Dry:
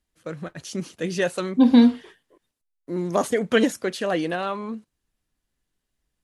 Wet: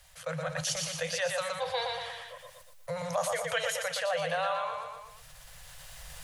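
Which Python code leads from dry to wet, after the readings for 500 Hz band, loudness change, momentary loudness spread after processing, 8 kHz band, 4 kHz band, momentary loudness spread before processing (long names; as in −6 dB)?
−7.0 dB, −10.0 dB, 18 LU, +2.5 dB, −0.5 dB, 19 LU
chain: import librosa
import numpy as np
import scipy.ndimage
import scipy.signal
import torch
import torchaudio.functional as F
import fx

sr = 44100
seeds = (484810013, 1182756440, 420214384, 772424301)

y = fx.recorder_agc(x, sr, target_db=-13.5, rise_db_per_s=14.0, max_gain_db=30)
y = scipy.signal.sosfilt(scipy.signal.cheby1(5, 1.0, [160.0, 500.0], 'bandstop', fs=sr, output='sos'), y)
y = fx.low_shelf(y, sr, hz=160.0, db=-6.5)
y = fx.echo_feedback(y, sr, ms=119, feedback_pct=34, wet_db=-6.0)
y = fx.env_flatten(y, sr, amount_pct=50)
y = y * librosa.db_to_amplitude(-7.5)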